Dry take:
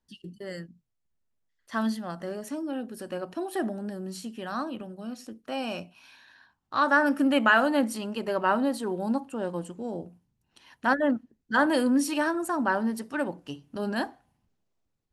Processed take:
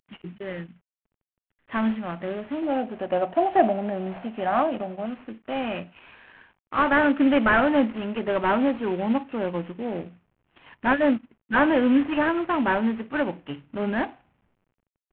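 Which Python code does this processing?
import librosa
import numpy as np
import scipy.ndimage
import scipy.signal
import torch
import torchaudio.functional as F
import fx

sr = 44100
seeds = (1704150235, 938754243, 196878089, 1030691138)

y = fx.cvsd(x, sr, bps=16000)
y = fx.peak_eq(y, sr, hz=700.0, db=15.0, octaves=0.63, at=(2.62, 5.06))
y = F.gain(torch.from_numpy(y), 4.5).numpy()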